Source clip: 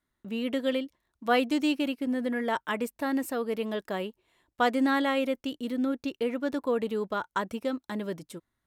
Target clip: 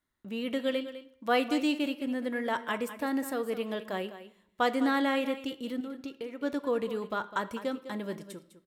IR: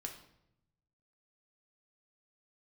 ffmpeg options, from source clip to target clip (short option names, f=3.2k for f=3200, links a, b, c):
-filter_complex "[0:a]asettb=1/sr,asplit=3[a][b][c];[a]atrim=end=5.804[d];[b]atrim=start=5.8:end=6.41,asetpts=PTS-STARTPTS,afade=t=in:d=0.004:c=qsin,afade=t=out:st=0.606:d=0.004:c=qsin,acompressor=threshold=-34dB:ratio=6[e];[c]atrim=start=6.406[f];[d][e]acrossfade=d=0.004:c1=hsin:c2=qsin[g];[g][f]acrossfade=d=0.004:c1=qsin:c2=hsin,aecho=1:1:204:0.224,asplit=2[h][i];[1:a]atrim=start_sample=2205,lowshelf=f=340:g=-8.5[j];[i][j]afir=irnorm=-1:irlink=0,volume=-1.5dB[k];[h][k]amix=inputs=2:normalize=0,volume=-5dB"